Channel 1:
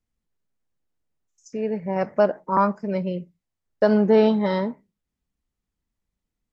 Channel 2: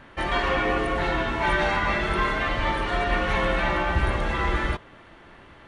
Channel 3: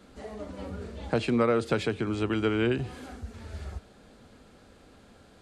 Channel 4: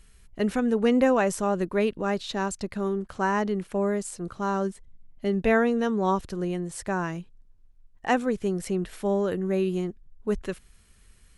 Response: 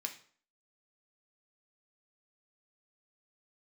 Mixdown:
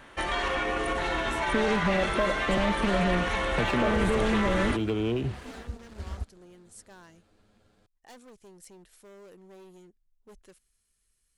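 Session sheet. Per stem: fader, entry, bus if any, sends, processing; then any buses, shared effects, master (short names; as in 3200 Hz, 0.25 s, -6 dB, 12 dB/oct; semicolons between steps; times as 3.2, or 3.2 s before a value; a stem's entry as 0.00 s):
0.0 dB, 0.00 s, bus A, no send, steep low-pass 770 Hz 96 dB/oct; limiter -19.5 dBFS, peak gain reduction 11 dB; three-band squash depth 40%
-1.5 dB, 0.00 s, bus B, no send, bell 4700 Hz -4.5 dB 0.36 oct
-4.0 dB, 2.45 s, bus A, no send, envelope flanger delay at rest 11.1 ms, full sweep at -23.5 dBFS
-20.0 dB, 0.00 s, bus B, no send, hard clip -26 dBFS, distortion -7 dB
bus A: 0.0 dB, sample leveller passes 2; compressor, threshold -25 dBFS, peak gain reduction 7.5 dB
bus B: 0.0 dB, tone controls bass -7 dB, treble +10 dB; limiter -20 dBFS, peak gain reduction 7 dB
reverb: off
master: low shelf 62 Hz +6.5 dB; Doppler distortion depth 0.16 ms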